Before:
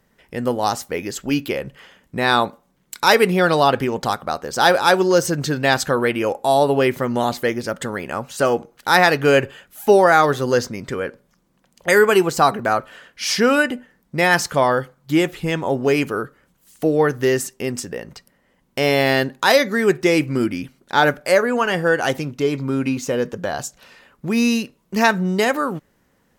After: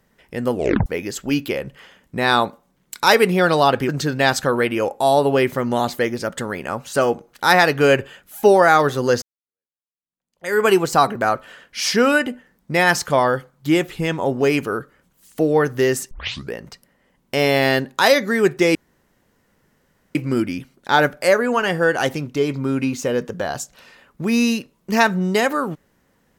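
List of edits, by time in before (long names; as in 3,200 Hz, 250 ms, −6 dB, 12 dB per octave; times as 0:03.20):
0:00.53: tape stop 0.33 s
0:03.89–0:05.33: remove
0:10.66–0:12.08: fade in exponential
0:17.55: tape start 0.42 s
0:20.19: splice in room tone 1.40 s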